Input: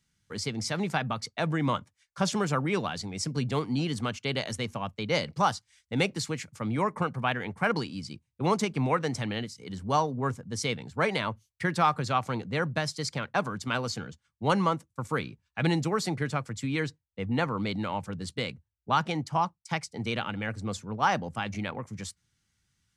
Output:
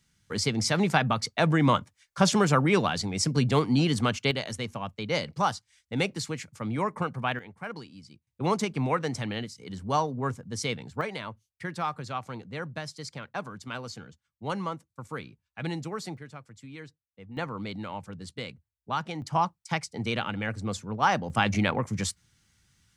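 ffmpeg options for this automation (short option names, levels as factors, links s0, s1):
-af "asetnsamples=n=441:p=0,asendcmd='4.31 volume volume -1dB;7.39 volume volume -11dB;8.27 volume volume -0.5dB;11.01 volume volume -7dB;16.17 volume volume -14dB;17.37 volume volume -5dB;19.22 volume volume 1.5dB;21.3 volume volume 8.5dB',volume=1.88"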